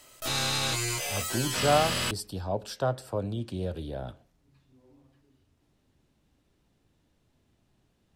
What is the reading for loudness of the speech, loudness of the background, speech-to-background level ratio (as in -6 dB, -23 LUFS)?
-31.5 LUFS, -28.5 LUFS, -3.0 dB